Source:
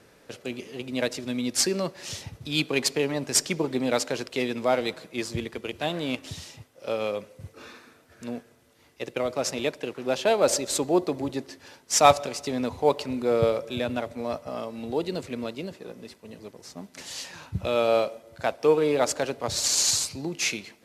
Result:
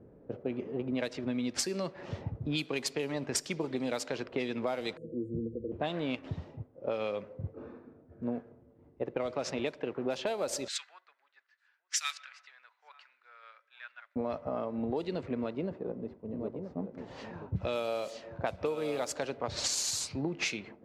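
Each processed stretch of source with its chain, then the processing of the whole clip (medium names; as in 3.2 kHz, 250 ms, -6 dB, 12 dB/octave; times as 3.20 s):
4.97–5.72 s: rippled EQ curve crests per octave 1.9, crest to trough 17 dB + compression 2.5:1, threshold -40 dBFS + brick-wall FIR band-stop 620–6700 Hz
10.68–14.16 s: Chebyshev high-pass 1.5 kHz, order 4 + delay 893 ms -22.5 dB
15.36–19.07 s: median filter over 3 samples + treble shelf 4.3 kHz +4.5 dB + delay 978 ms -10 dB
whole clip: level-controlled noise filter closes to 390 Hz, open at -20 dBFS; compression 16:1, threshold -34 dBFS; trim +4.5 dB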